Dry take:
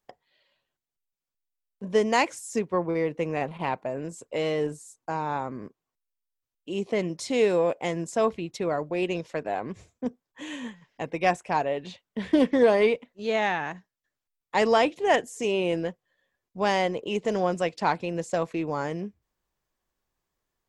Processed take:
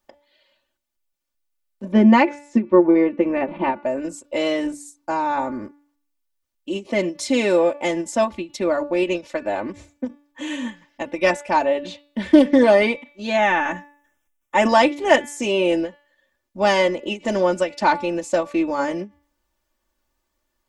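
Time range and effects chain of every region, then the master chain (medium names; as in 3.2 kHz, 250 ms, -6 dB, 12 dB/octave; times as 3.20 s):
1.92–3.84 s: low-pass 2.4 kHz + small resonant body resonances 220/350 Hz, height 12 dB, ringing for 90 ms
13.37–14.69 s: transient shaper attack -1 dB, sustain +7 dB + Butterworth band-stop 4.4 kHz, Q 2.2
whole clip: comb 3.4 ms, depth 93%; de-hum 289.1 Hz, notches 22; endings held to a fixed fall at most 280 dB/s; trim +4.5 dB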